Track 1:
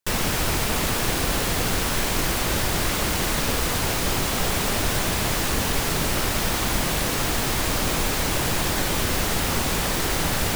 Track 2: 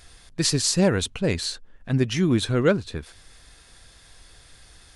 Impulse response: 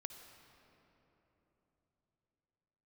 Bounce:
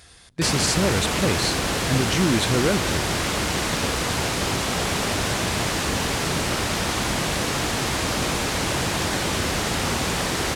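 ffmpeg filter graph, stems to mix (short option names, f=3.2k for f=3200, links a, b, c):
-filter_complex "[0:a]lowpass=9k,adelay=350,volume=1dB[a];[1:a]alimiter=limit=-16dB:level=0:latency=1,volume=1.5dB,asplit=2[b][c];[c]volume=-14dB[d];[2:a]atrim=start_sample=2205[e];[d][e]afir=irnorm=-1:irlink=0[f];[a][b][f]amix=inputs=3:normalize=0,highpass=63"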